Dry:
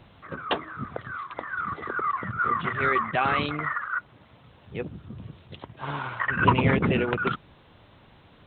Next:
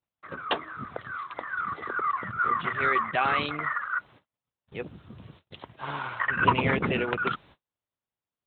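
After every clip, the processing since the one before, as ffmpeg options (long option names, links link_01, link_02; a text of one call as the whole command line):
ffmpeg -i in.wav -af "lowshelf=frequency=340:gain=-7.5,agate=range=-39dB:threshold=-51dB:ratio=16:detection=peak" out.wav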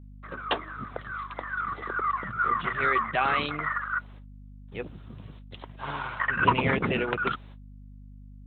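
ffmpeg -i in.wav -af "aeval=exprs='val(0)+0.00562*(sin(2*PI*50*n/s)+sin(2*PI*2*50*n/s)/2+sin(2*PI*3*50*n/s)/3+sin(2*PI*4*50*n/s)/4+sin(2*PI*5*50*n/s)/5)':channel_layout=same" out.wav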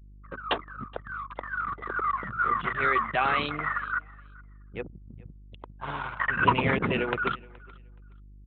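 ffmpeg -i in.wav -af "anlmdn=2.51,aecho=1:1:423|846:0.0631|0.0126" out.wav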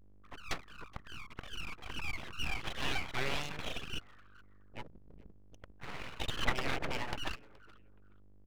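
ffmpeg -i in.wav -af "aeval=exprs='abs(val(0))':channel_layout=same,volume=-7.5dB" out.wav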